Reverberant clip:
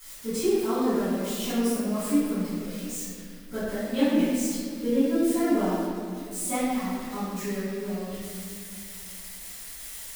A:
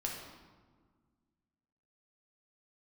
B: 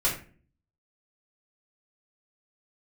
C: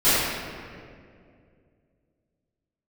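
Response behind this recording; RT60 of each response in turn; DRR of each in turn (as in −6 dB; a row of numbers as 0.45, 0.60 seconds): C; 1.6, 0.40, 2.3 seconds; −1.5, −7.5, −18.0 decibels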